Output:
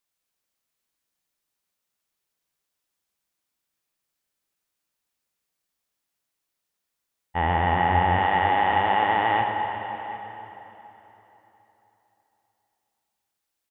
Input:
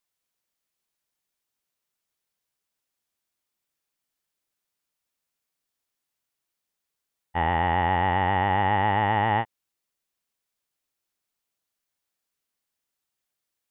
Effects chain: 8.18–9.41 s: tone controls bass -13 dB, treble +10 dB; on a send: delay 749 ms -18 dB; on the sum: plate-style reverb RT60 3.7 s, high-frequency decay 0.8×, DRR 2.5 dB

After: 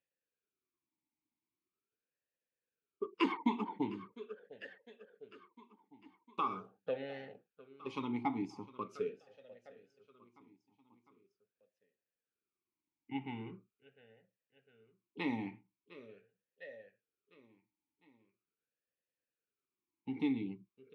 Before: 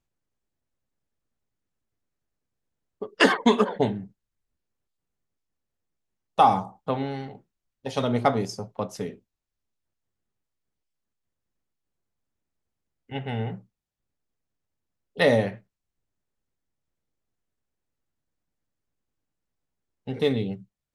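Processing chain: peaking EQ 490 Hz -8.5 dB 1.3 oct; on a send: feedback delay 704 ms, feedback 56%, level -22.5 dB; on the sum: compression 1.5:1, threshold -37 dBFS, peak gain reduction 8 dB; talking filter e-u 0.42 Hz; trim +8.5 dB

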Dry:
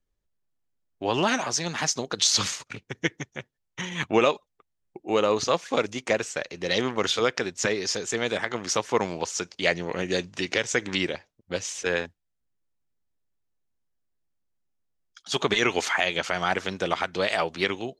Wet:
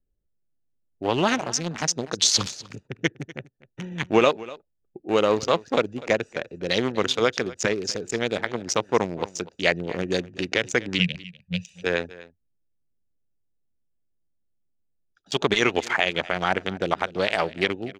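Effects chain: local Wiener filter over 41 samples; 10.99–11.76 s: FFT filter 110 Hz 0 dB, 180 Hz +11 dB, 330 Hz -30 dB, 470 Hz -14 dB, 1.3 kHz -19 dB, 2.5 kHz +9 dB, 5.7 kHz -1 dB; delay 246 ms -19 dB; trim +3 dB

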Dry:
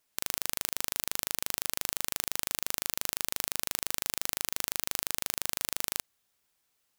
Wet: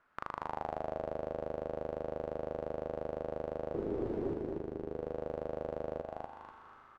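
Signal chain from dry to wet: peak limiter -13.5 dBFS, peak gain reduction 11 dB; level rider gain up to 5 dB; 3.74–4.34 s: word length cut 6-bit, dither triangular; on a send: feedback delay 245 ms, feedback 29%, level -4.5 dB; on the sum: plate-style reverb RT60 3.7 s, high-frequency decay 1×, DRR 11.5 dB; touch-sensitive low-pass 390–1400 Hz down, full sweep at -39 dBFS; trim +8 dB

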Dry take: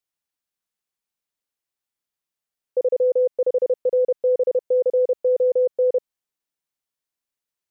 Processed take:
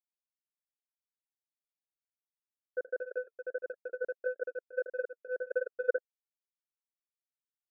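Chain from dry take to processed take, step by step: 5.53–5.96 s: comb 4.4 ms, depth 59%; loudest bins only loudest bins 16; speakerphone echo 220 ms, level -28 dB; flange 1.6 Hz, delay 4.5 ms, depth 5.7 ms, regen -62%; power-law waveshaper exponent 3; tremolo of two beating tones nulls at 5.4 Hz

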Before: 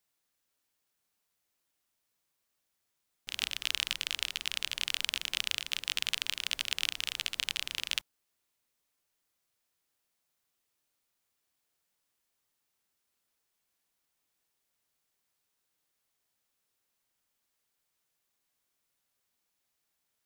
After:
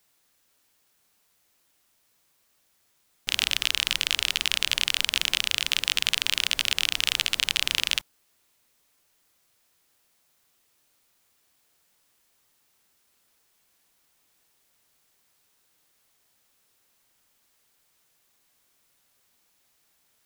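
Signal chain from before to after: loudness maximiser +14 dB; trim -1 dB

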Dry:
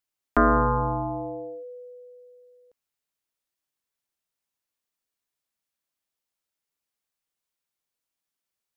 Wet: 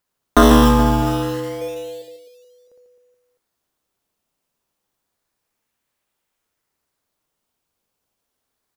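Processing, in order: 1.61–2.02 s: comb 4.1 ms, depth 96%; in parallel at -5 dB: decimation with a swept rate 14×, swing 100% 0.29 Hz; on the sum: reverse bouncing-ball echo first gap 60 ms, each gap 1.4×, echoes 5; trim +5.5 dB

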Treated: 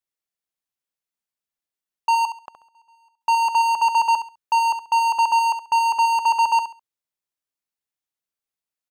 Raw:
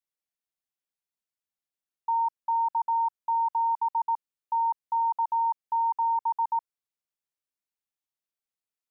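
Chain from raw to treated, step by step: waveshaping leveller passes 3; 2.25–3.21 s: inverted gate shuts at -36 dBFS, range -38 dB; 3.71–4.94 s: hum notches 50/100/150 Hz; feedback delay 68 ms, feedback 24%, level -10 dB; trim +7 dB

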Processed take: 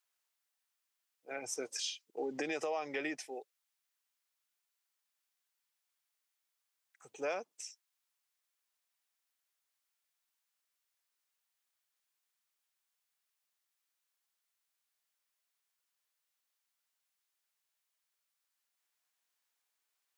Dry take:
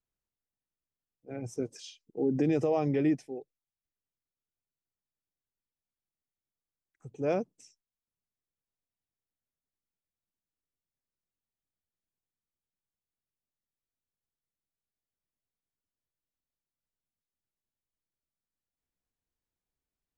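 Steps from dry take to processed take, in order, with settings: high-pass 1 kHz 12 dB/octave; compression 6:1, threshold -44 dBFS, peak gain reduction 11 dB; trim +10.5 dB

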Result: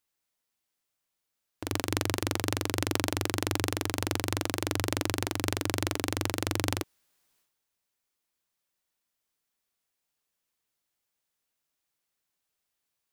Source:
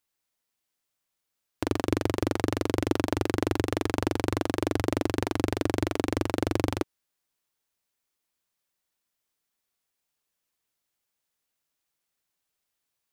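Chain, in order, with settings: transient shaper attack -8 dB, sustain +10 dB; trim -1 dB

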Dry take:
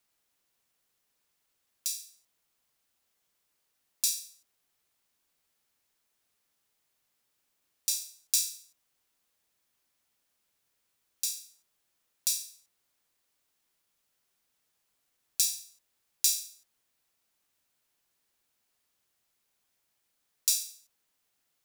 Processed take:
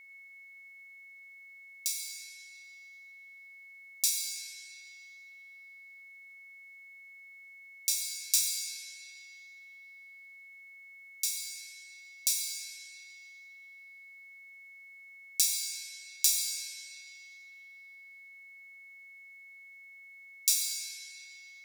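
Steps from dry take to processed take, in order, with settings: whistle 2.2 kHz -51 dBFS; algorithmic reverb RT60 4 s, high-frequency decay 0.7×, pre-delay 35 ms, DRR 1 dB

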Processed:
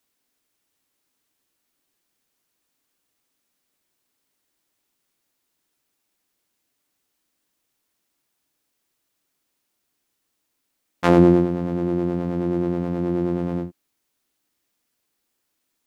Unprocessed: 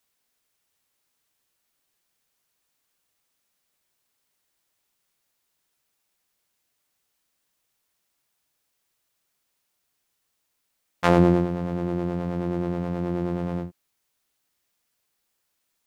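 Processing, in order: peaking EQ 290 Hz +8.5 dB 0.85 oct

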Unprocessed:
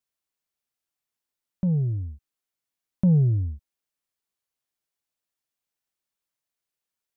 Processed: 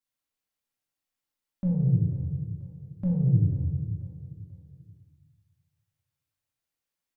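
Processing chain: peak limiter -20.5 dBFS, peak gain reduction 6 dB; on a send: feedback delay 488 ms, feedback 38%, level -15 dB; on the sum: simulated room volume 560 m³, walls mixed, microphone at 2.2 m; trim -5.5 dB

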